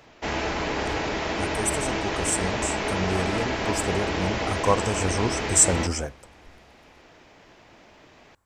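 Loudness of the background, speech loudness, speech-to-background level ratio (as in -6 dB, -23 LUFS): -27.5 LUFS, -26.0 LUFS, 1.5 dB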